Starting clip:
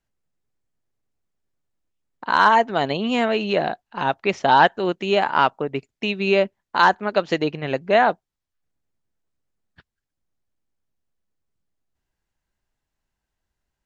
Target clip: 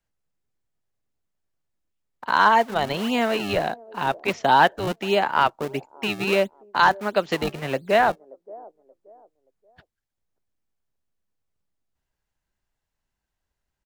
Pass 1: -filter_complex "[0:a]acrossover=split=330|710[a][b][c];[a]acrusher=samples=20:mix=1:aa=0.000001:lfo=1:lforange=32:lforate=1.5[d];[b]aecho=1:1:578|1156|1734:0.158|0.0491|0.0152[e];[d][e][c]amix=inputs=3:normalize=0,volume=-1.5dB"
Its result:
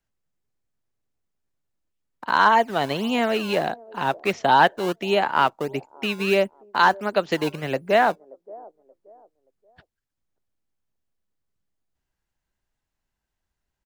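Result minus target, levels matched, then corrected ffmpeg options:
decimation with a swept rate: distortion -10 dB
-filter_complex "[0:a]acrossover=split=330|710[a][b][c];[a]acrusher=samples=50:mix=1:aa=0.000001:lfo=1:lforange=80:lforate=1.5[d];[b]aecho=1:1:578|1156|1734:0.158|0.0491|0.0152[e];[d][e][c]amix=inputs=3:normalize=0,volume=-1.5dB"

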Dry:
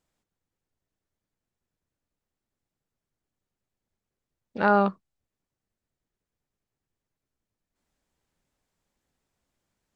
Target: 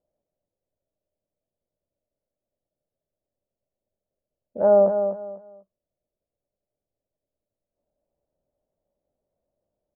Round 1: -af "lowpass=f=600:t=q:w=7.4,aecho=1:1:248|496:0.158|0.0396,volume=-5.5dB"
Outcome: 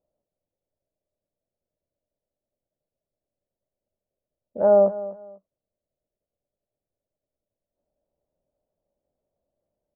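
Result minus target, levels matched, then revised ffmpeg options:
echo-to-direct -8 dB
-af "lowpass=f=600:t=q:w=7.4,aecho=1:1:248|496|744:0.398|0.0995|0.0249,volume=-5.5dB"

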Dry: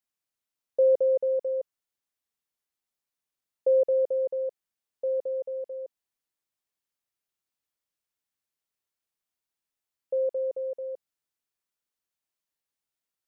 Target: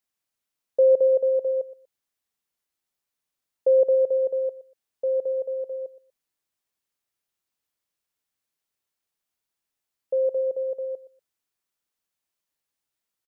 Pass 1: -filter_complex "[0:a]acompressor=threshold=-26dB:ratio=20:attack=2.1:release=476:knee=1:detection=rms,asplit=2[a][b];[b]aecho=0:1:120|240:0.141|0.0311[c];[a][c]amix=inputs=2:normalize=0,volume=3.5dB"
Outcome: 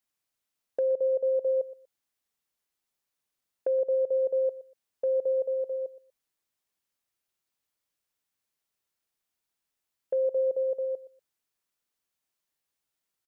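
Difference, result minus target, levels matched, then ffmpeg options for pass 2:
compressor: peak gain reduction +9.5 dB
-filter_complex "[0:a]asplit=2[a][b];[b]aecho=0:1:120|240:0.141|0.0311[c];[a][c]amix=inputs=2:normalize=0,volume=3.5dB"

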